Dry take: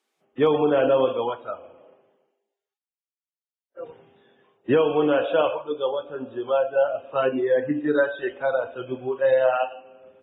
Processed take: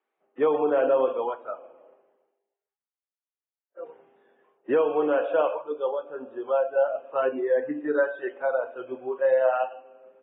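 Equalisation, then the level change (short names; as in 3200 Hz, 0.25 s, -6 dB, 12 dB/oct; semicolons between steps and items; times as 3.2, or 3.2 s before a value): BPF 370–2700 Hz; air absorption 410 m; 0.0 dB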